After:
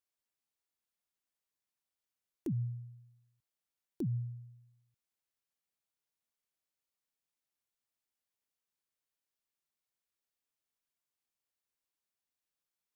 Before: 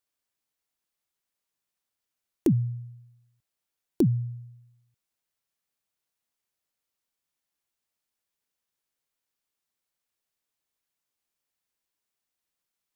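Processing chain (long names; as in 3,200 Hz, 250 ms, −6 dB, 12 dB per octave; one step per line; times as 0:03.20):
brickwall limiter −23 dBFS, peak gain reduction 10.5 dB
level −7 dB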